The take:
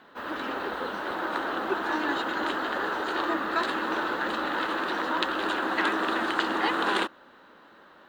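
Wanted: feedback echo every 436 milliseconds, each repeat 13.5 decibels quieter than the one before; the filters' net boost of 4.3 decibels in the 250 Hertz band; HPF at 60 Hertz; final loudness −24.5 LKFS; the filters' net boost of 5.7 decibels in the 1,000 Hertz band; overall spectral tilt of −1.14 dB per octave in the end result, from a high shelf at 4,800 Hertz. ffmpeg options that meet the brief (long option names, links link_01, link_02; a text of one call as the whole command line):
ffmpeg -i in.wav -af "highpass=60,equalizer=frequency=250:width_type=o:gain=5.5,equalizer=frequency=1000:width_type=o:gain=7,highshelf=frequency=4800:gain=-4.5,aecho=1:1:436|872:0.211|0.0444,volume=-0.5dB" out.wav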